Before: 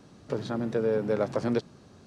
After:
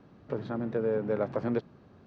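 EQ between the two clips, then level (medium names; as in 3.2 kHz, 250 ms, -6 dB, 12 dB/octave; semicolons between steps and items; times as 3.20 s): low-pass 2.4 kHz 12 dB/octave; -2.5 dB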